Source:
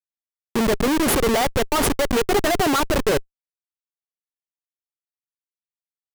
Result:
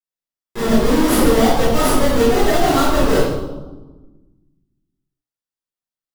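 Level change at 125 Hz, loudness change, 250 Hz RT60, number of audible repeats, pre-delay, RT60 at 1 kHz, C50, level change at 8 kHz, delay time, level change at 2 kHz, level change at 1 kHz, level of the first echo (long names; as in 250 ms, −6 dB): +6.5 dB, +4.5 dB, 1.8 s, no echo audible, 15 ms, 1.1 s, −2.0 dB, +1.0 dB, no echo audible, +1.5 dB, +4.0 dB, no echo audible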